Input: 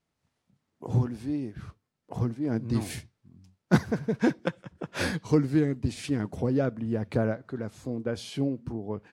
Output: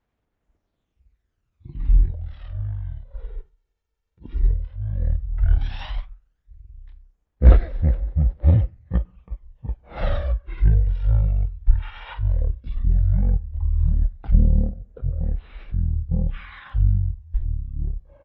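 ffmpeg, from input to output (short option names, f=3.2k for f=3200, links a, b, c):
-af "asubboost=boost=3.5:cutoff=210,asetrate=30296,aresample=44100,atempo=1.45565,aphaser=in_gain=1:out_gain=1:delay=1.1:decay=0.49:speed=0.26:type=sinusoidal,asoftclip=type=hard:threshold=-3dB,asetrate=22050,aresample=44100"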